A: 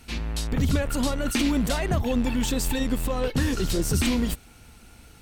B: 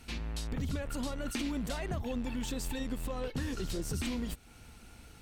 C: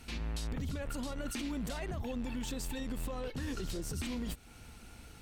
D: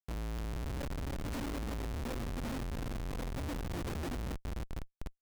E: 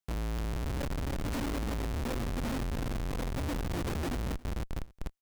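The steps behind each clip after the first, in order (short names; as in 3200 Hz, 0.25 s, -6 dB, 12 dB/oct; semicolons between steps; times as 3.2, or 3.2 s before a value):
high shelf 11000 Hz -4.5 dB; compressor 2:1, threshold -35 dBFS, peak gain reduction 9.5 dB; gain -3.5 dB
limiter -31 dBFS, peak gain reduction 7 dB; gain +1 dB
chorus voices 4, 0.42 Hz, delay 16 ms, depth 2 ms; split-band echo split 500 Hz, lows 0.284 s, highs 0.739 s, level -6 dB; Schmitt trigger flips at -39 dBFS; gain +2 dB
echo 0.277 s -22 dB; gain +4.5 dB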